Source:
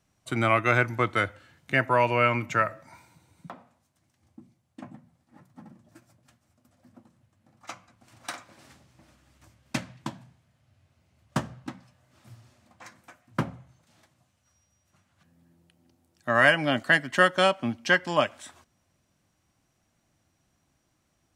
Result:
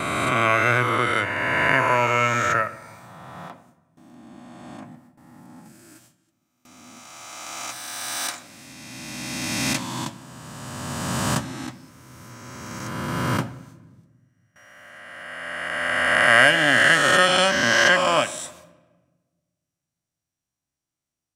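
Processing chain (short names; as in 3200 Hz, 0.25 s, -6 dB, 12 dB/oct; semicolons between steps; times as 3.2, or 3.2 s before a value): spectral swells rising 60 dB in 2.84 s; gate with hold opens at -42 dBFS; high shelf 3900 Hz +6.5 dB, from 5.65 s +11.5 dB; shoebox room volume 990 m³, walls mixed, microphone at 0.3 m; gain -1.5 dB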